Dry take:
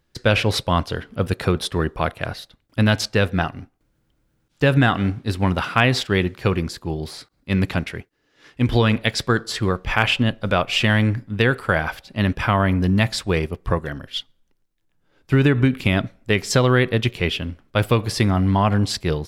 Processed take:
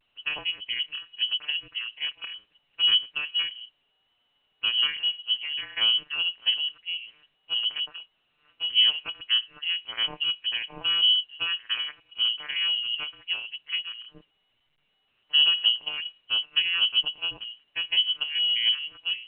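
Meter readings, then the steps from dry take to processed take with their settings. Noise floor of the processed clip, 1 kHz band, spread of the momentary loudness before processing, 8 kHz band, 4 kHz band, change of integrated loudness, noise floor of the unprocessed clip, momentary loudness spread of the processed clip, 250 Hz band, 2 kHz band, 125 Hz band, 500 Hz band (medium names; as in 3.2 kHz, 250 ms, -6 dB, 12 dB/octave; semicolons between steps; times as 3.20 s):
-72 dBFS, -21.0 dB, 10 LU, under -40 dB, +7.5 dB, -4.0 dB, -68 dBFS, 13 LU, under -35 dB, -8.0 dB, under -40 dB, under -30 dB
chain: vocoder on a broken chord major triad, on A#2, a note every 193 ms; frequency inversion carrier 3.1 kHz; trim -6.5 dB; A-law 64 kbps 8 kHz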